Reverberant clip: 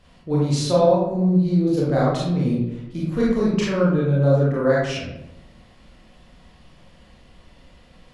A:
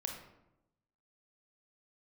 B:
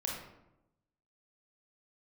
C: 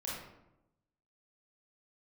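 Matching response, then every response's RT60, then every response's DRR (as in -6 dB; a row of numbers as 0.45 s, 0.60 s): C; 0.90 s, 0.90 s, 0.90 s; 1.5 dB, -2.5 dB, -7.0 dB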